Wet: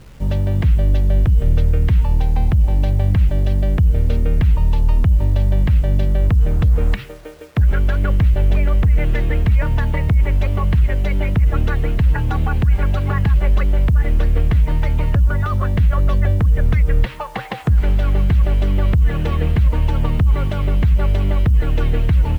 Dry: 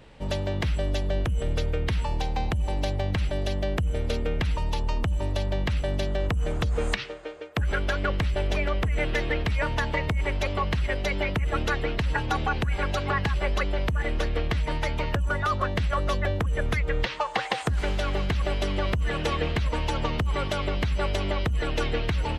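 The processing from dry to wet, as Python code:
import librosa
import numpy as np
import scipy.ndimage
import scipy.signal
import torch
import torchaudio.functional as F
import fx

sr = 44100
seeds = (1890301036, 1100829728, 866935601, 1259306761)

y = fx.bass_treble(x, sr, bass_db=13, treble_db=-12)
y = fx.quant_dither(y, sr, seeds[0], bits=8, dither='none')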